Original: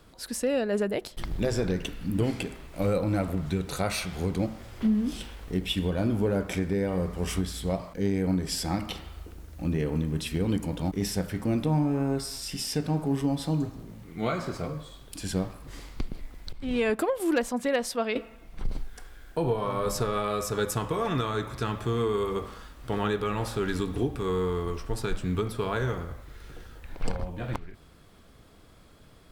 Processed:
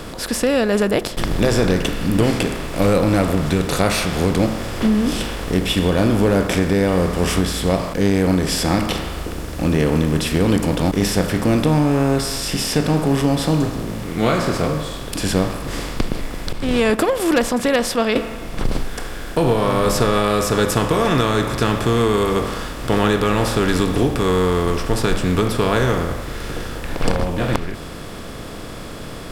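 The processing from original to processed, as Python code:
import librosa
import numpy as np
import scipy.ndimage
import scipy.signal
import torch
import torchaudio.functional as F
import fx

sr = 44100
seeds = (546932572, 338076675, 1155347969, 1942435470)

y = fx.bin_compress(x, sr, power=0.6)
y = y * librosa.db_to_amplitude(6.5)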